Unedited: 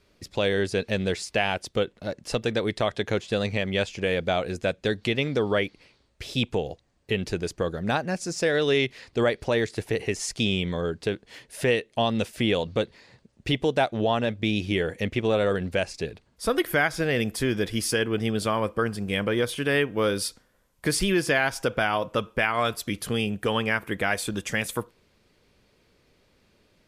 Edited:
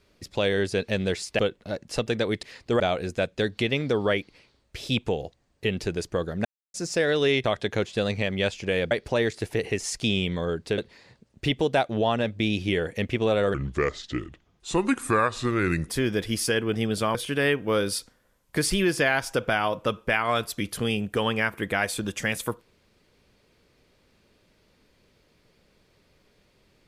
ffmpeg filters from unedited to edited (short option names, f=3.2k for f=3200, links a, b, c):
-filter_complex "[0:a]asplit=12[a][b][c][d][e][f][g][h][i][j][k][l];[a]atrim=end=1.392[m];[b]atrim=start=1.748:end=2.792[n];[c]atrim=start=8.898:end=9.272[o];[d]atrim=start=4.258:end=7.91,asetpts=PTS-STARTPTS,afade=t=out:st=3.648:d=0.004:c=hsin[p];[e]atrim=start=7.91:end=8.2,asetpts=PTS-STARTPTS,volume=0[q];[f]atrim=start=8.2:end=8.902,asetpts=PTS-STARTPTS,afade=t=in:d=0.004:c=hsin[r];[g]atrim=start=2.788:end=4.262[s];[h]atrim=start=9.268:end=11.142[t];[i]atrim=start=12.808:end=15.574[u];[j]atrim=start=15.57:end=17.33,asetpts=PTS-STARTPTS,asetrate=33075,aresample=44100[v];[k]atrim=start=17.326:end=18.592[w];[l]atrim=start=19.438[x];[m][n]acrossfade=d=0.004:c1=hsin:c2=hsin[y];[y][o]acrossfade=d=0.004:c1=hsin:c2=hsin[z];[p][q][r]concat=n=3:v=0:a=1[aa];[z][aa]acrossfade=d=0.004:c1=hsin:c2=hsin[ab];[ab][s]acrossfade=d=0.004:c1=hsin:c2=hsin[ac];[ac][t]acrossfade=d=0.004:c1=hsin:c2=hsin[ad];[ad][u]acrossfade=d=0.004:c1=hsin:c2=hsin[ae];[ae][v]acrossfade=d=0.004:c1=hsin:c2=hsin[af];[af][w]acrossfade=d=0.004:c1=hsin:c2=hsin[ag];[ag][x]acrossfade=d=0.004:c1=hsin:c2=hsin"